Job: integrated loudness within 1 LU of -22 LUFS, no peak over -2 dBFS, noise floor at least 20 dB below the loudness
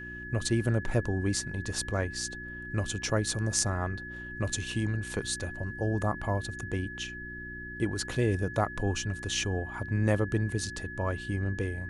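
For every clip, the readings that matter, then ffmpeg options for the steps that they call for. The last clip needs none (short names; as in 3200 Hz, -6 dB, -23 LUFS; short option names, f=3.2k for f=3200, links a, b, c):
hum 60 Hz; harmonics up to 360 Hz; hum level -43 dBFS; steady tone 1700 Hz; tone level -40 dBFS; loudness -31.5 LUFS; peak -7.5 dBFS; loudness target -22.0 LUFS
-> -af "bandreject=f=60:t=h:w=4,bandreject=f=120:t=h:w=4,bandreject=f=180:t=h:w=4,bandreject=f=240:t=h:w=4,bandreject=f=300:t=h:w=4,bandreject=f=360:t=h:w=4"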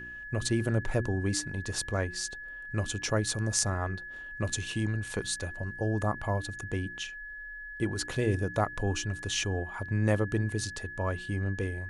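hum none; steady tone 1700 Hz; tone level -40 dBFS
-> -af "bandreject=f=1.7k:w=30"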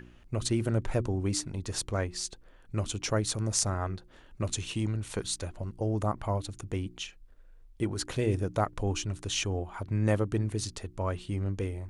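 steady tone none; loudness -32.0 LUFS; peak -7.5 dBFS; loudness target -22.0 LUFS
-> -af "volume=10dB,alimiter=limit=-2dB:level=0:latency=1"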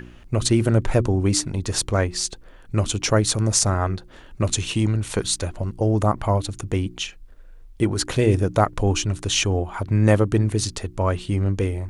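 loudness -22.0 LUFS; peak -2.0 dBFS; noise floor -46 dBFS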